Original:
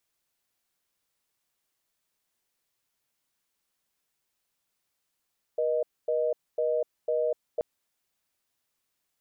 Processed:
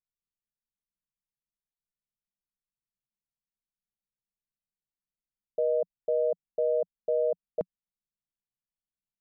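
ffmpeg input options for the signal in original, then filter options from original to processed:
-f lavfi -i "aevalsrc='0.0473*(sin(2*PI*480*t)+sin(2*PI*620*t))*clip(min(mod(t,0.5),0.25-mod(t,0.5))/0.005,0,1)':d=2.03:s=44100"
-af "anlmdn=0.0631,equalizer=f=180:w=1.7:g=14.5"

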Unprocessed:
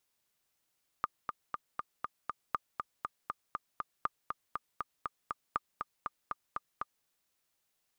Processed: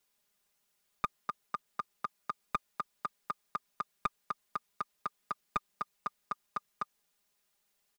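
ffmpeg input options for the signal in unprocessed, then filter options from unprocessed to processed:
-f lavfi -i "aevalsrc='pow(10,(-17-5*gte(mod(t,6*60/239),60/239))/20)*sin(2*PI*1210*mod(t,60/239))*exp(-6.91*mod(t,60/239)/0.03)':d=6.02:s=44100"
-filter_complex "[0:a]aecho=1:1:4.9:0.88,acrossover=split=130[a][b];[b]aeval=exprs='clip(val(0),-1,0.0447)':c=same[c];[a][c]amix=inputs=2:normalize=0"

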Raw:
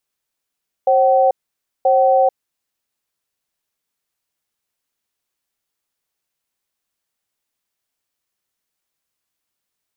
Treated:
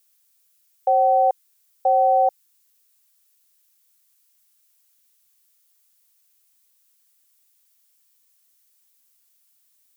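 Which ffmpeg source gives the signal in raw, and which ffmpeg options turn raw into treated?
-f lavfi -i "aevalsrc='0.224*(sin(2*PI*534*t)+sin(2*PI*761*t))*clip(min(mod(t,0.98),0.44-mod(t,0.98))/0.005,0,1)':d=1.85:s=44100"
-af "highpass=740,crystalizer=i=4:c=0"

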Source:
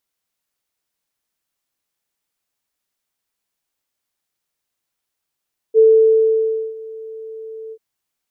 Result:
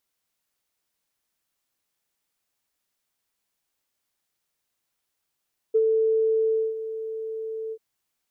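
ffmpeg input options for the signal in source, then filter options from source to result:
-f lavfi -i "aevalsrc='0.501*sin(2*PI*443*t)':d=2.039:s=44100,afade=t=in:d=0.042,afade=t=out:st=0.042:d=0.957:silence=0.0708,afade=t=out:st=1.98:d=0.059"
-af "acompressor=threshold=-20dB:ratio=10"

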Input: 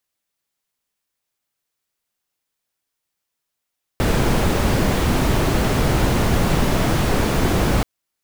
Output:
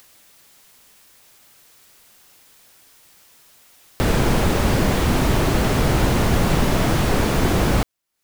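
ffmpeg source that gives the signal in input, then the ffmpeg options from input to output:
-f lavfi -i "anoisesrc=c=brown:a=0.661:d=3.83:r=44100:seed=1"
-af "acompressor=mode=upward:threshold=-29dB:ratio=2.5"

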